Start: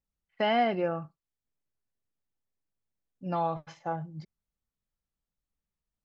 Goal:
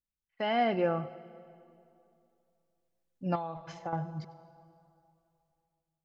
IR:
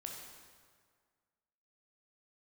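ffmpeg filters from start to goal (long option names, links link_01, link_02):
-filter_complex "[0:a]dynaudnorm=framelen=180:gausssize=7:maxgain=11dB,asplit=2[link_01][link_02];[1:a]atrim=start_sample=2205,asetrate=29106,aresample=44100,adelay=97[link_03];[link_02][link_03]afir=irnorm=-1:irlink=0,volume=-16dB[link_04];[link_01][link_04]amix=inputs=2:normalize=0,asettb=1/sr,asplit=3[link_05][link_06][link_07];[link_05]atrim=end=3.354[link_08];[link_06]atrim=start=3.35:end=3.93,asetpts=PTS-STARTPTS,afade=type=in:duration=0.004:curve=qsin,afade=type=out:start_time=0.576:duration=0.004:curve=qsin,acompressor=threshold=-26dB:ratio=8[link_09];[link_07]atrim=start=3.926[link_10];[link_08][link_09]acrossfade=duration=0.004:curve1=hsin:curve2=qsin[link_11];[link_11][link_10]acrossfade=duration=0.004:curve1=qsin:curve2=hsin,volume=-8.5dB"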